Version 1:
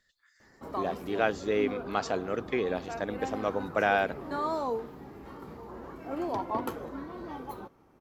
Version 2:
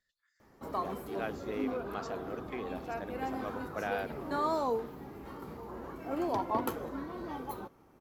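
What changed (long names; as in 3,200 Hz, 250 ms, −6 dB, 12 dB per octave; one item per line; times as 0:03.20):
speech −11.0 dB
background: add high-shelf EQ 9,500 Hz +7.5 dB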